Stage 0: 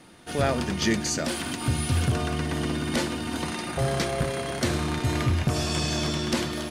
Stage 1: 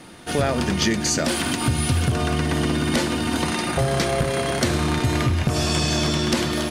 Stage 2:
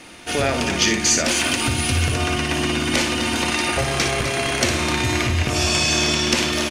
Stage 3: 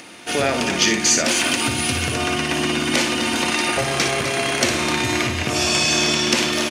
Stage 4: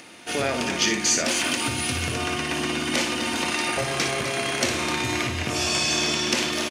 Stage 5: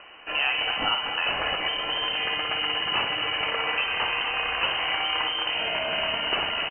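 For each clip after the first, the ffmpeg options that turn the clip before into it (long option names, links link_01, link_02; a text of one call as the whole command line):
ffmpeg -i in.wav -af "acompressor=threshold=-25dB:ratio=6,volume=8dB" out.wav
ffmpeg -i in.wav -filter_complex "[0:a]equalizer=frequency=160:width_type=o:width=0.67:gain=-9,equalizer=frequency=2500:width_type=o:width=0.67:gain=8,equalizer=frequency=6300:width_type=o:width=0.67:gain=6,asplit=2[link_01][link_02];[link_02]aecho=0:1:58.31|256.6:0.447|0.316[link_03];[link_01][link_03]amix=inputs=2:normalize=0" out.wav
ffmpeg -i in.wav -af "highpass=140,acompressor=mode=upward:threshold=-41dB:ratio=2.5,volume=1dB" out.wav
ffmpeg -i in.wav -filter_complex "[0:a]asplit=2[link_01][link_02];[link_02]adelay=24,volume=-12dB[link_03];[link_01][link_03]amix=inputs=2:normalize=0,volume=-5dB" out.wav
ffmpeg -i in.wav -af "lowpass=frequency=2700:width_type=q:width=0.5098,lowpass=frequency=2700:width_type=q:width=0.6013,lowpass=frequency=2700:width_type=q:width=0.9,lowpass=frequency=2700:width_type=q:width=2.563,afreqshift=-3200" out.wav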